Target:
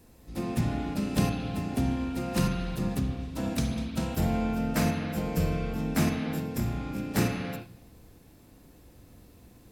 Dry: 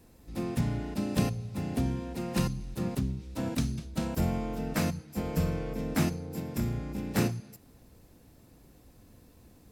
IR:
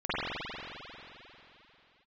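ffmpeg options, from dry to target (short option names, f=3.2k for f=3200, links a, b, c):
-filter_complex "[0:a]asplit=2[a][b];[1:a]atrim=start_sample=2205,afade=t=out:st=0.43:d=0.01,atrim=end_sample=19404,highshelf=f=3.5k:g=10.5[c];[b][c]afir=irnorm=-1:irlink=0,volume=-14.5dB[d];[a][d]amix=inputs=2:normalize=0"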